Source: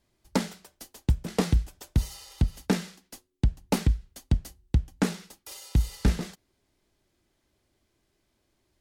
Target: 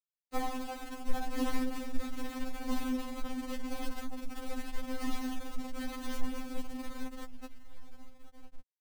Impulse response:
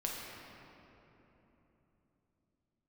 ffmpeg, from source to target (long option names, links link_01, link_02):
-filter_complex "[1:a]atrim=start_sample=2205[link_01];[0:a][link_01]afir=irnorm=-1:irlink=0,asplit=3[link_02][link_03][link_04];[link_02]afade=type=out:start_time=3.48:duration=0.02[link_05];[link_03]acompressor=threshold=-24dB:ratio=5,afade=type=in:start_time=3.48:duration=0.02,afade=type=out:start_time=4.36:duration=0.02[link_06];[link_04]afade=type=in:start_time=4.36:duration=0.02[link_07];[link_05][link_06][link_07]amix=inputs=3:normalize=0,aecho=1:1:798:0.531,highpass=frequency=150:width_type=q:width=0.5412,highpass=frequency=150:width_type=q:width=1.307,lowpass=frequency=2600:width_type=q:width=0.5176,lowpass=frequency=2600:width_type=q:width=0.7071,lowpass=frequency=2600:width_type=q:width=1.932,afreqshift=-160,afftfilt=real='re*gte(hypot(re,im),0.0316)':imag='im*gte(hypot(re,im),0.0316)':win_size=1024:overlap=0.75,flanger=delay=5.1:depth=7.2:regen=49:speed=0.82:shape=sinusoidal,acrusher=bits=7:dc=4:mix=0:aa=0.000001,acompressor=mode=upward:threshold=-36dB:ratio=2.5,afftfilt=real='re*3.46*eq(mod(b,12),0)':imag='im*3.46*eq(mod(b,12),0)':win_size=2048:overlap=0.75,volume=2dB"